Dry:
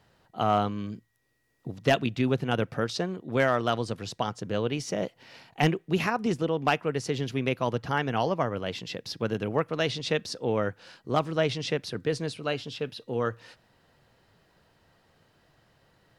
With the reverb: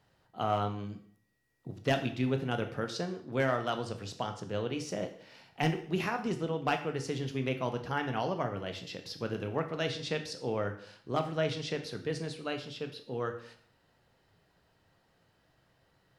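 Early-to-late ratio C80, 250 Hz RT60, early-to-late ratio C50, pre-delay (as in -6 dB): 13.5 dB, 0.65 s, 10.5 dB, 6 ms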